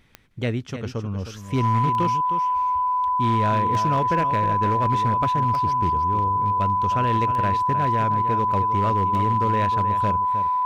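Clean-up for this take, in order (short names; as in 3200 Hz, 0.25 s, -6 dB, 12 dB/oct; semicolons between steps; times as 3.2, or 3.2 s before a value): clip repair -14.5 dBFS; de-click; notch 1000 Hz, Q 30; inverse comb 0.311 s -10.5 dB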